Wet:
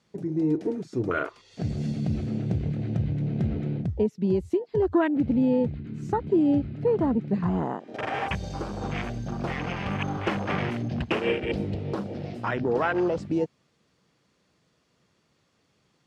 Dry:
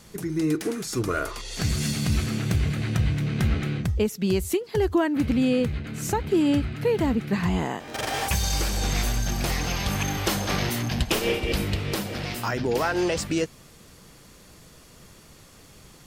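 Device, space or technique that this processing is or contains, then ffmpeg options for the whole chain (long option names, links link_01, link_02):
over-cleaned archive recording: -af "highpass=110,lowpass=5200,afwtdn=0.0316"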